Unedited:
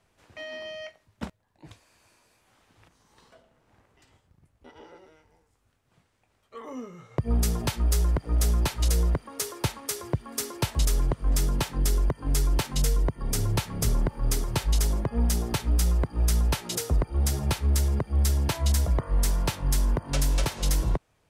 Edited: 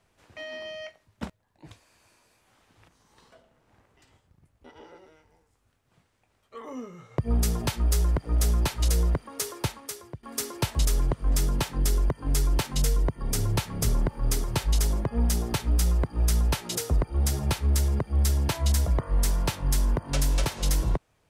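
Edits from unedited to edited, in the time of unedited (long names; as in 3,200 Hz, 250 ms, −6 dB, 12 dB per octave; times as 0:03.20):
0:09.53–0:10.23: fade out, to −18.5 dB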